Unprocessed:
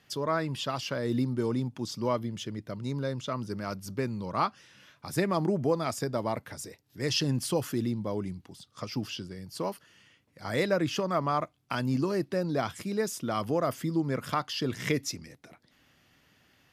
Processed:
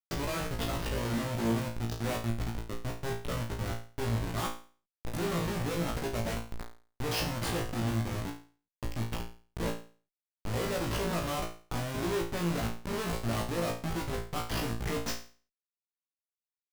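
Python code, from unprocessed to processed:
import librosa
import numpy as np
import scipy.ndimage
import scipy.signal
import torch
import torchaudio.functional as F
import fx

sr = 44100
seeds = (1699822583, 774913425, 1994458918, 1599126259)

y = fx.schmitt(x, sr, flips_db=-30.5)
y = fx.room_flutter(y, sr, wall_m=3.0, rt60_s=0.39)
y = F.gain(torch.from_numpy(y), -2.5).numpy()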